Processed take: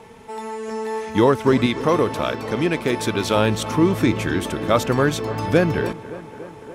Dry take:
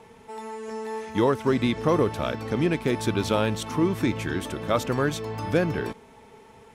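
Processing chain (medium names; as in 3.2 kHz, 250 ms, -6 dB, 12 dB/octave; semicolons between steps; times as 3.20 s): 1.66–3.36 s: bass shelf 330 Hz -7 dB; tape echo 285 ms, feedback 82%, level -15.5 dB, low-pass 2.6 kHz; trim +6 dB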